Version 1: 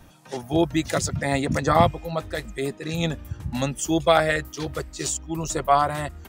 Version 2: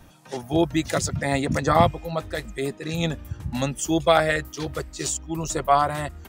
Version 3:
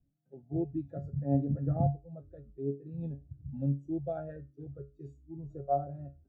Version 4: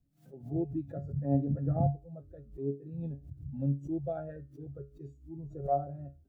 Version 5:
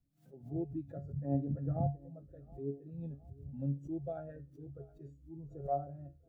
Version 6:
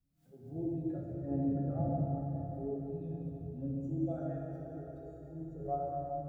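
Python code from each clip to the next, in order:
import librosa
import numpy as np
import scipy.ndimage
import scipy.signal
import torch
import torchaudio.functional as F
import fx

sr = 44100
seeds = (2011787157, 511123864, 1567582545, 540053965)

y1 = x
y2 = np.convolve(y1, np.full(42, 1.0 / 42))[:len(y1)]
y2 = fx.comb_fb(y2, sr, f0_hz=140.0, decay_s=0.38, harmonics='all', damping=0.0, mix_pct=80)
y2 = fx.spectral_expand(y2, sr, expansion=1.5)
y2 = y2 * 10.0 ** (2.0 / 20.0)
y3 = fx.pre_swell(y2, sr, db_per_s=140.0)
y4 = fx.echo_feedback(y3, sr, ms=718, feedback_pct=46, wet_db=-23)
y4 = y4 * 10.0 ** (-5.0 / 20.0)
y5 = fx.rev_plate(y4, sr, seeds[0], rt60_s=3.9, hf_ratio=0.8, predelay_ms=0, drr_db=-4.5)
y5 = y5 * 10.0 ** (-3.0 / 20.0)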